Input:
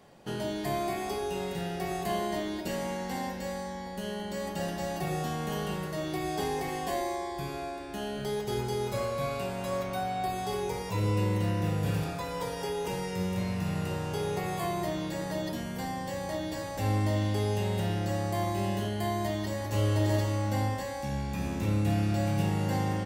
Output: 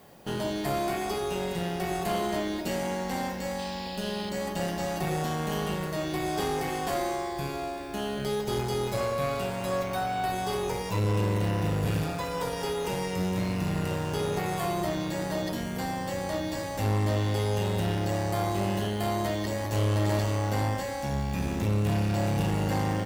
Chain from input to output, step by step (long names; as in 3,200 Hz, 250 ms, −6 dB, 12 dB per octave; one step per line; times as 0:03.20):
background noise violet −65 dBFS
tube saturation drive 27 dB, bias 0.6
sound drawn into the spectrogram noise, 0:03.58–0:04.30, 2,400–5,300 Hz −50 dBFS
level +6 dB